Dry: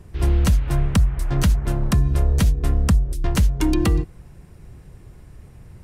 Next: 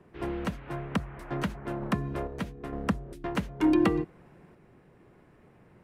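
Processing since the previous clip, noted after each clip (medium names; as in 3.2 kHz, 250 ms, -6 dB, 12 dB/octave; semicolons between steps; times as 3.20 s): three-band isolator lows -23 dB, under 180 Hz, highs -17 dB, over 2.8 kHz; random-step tremolo 2.2 Hz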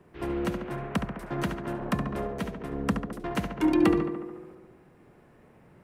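treble shelf 7.3 kHz +6.5 dB; tape echo 70 ms, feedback 78%, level -5 dB, low-pass 2.5 kHz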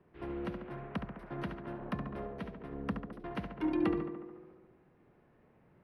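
boxcar filter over 6 samples; trim -9 dB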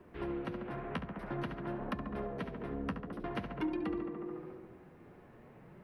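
compression 3:1, threshold -47 dBFS, peak gain reduction 15.5 dB; flange 0.5 Hz, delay 2.9 ms, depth 9.5 ms, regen -41%; trim +13 dB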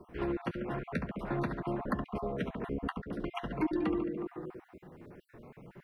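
random holes in the spectrogram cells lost 32%; trim +5 dB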